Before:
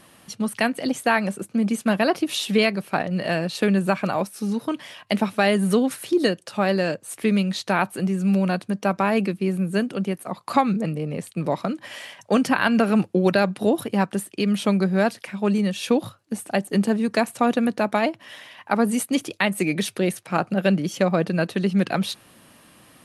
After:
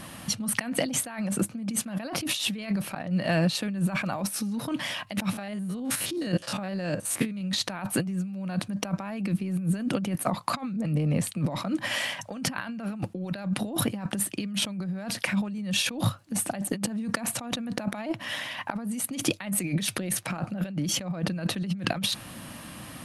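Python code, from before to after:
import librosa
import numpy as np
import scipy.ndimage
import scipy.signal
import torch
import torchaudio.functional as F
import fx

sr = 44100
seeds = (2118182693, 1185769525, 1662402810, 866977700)

y = fx.spec_steps(x, sr, hold_ms=50, at=(5.33, 7.41))
y = fx.edit(y, sr, fx.fade_in_from(start_s=2.95, length_s=1.3, floor_db=-23.5), tone=tone)
y = fx.peak_eq(y, sr, hz=410.0, db=-10.0, octaves=0.44)
y = fx.over_compress(y, sr, threshold_db=-33.0, ratio=-1.0)
y = fx.low_shelf(y, sr, hz=320.0, db=6.0)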